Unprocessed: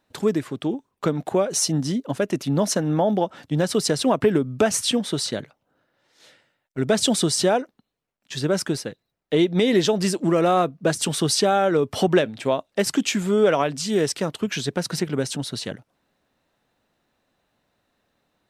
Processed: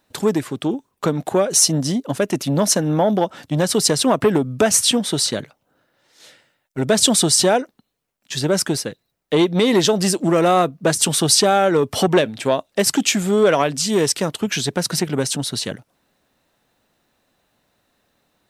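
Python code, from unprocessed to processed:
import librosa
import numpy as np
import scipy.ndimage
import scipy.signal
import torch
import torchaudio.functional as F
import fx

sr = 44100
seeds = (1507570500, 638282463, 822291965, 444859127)

y = fx.high_shelf(x, sr, hz=5800.0, db=7.5)
y = fx.transformer_sat(y, sr, knee_hz=650.0)
y = F.gain(torch.from_numpy(y), 4.0).numpy()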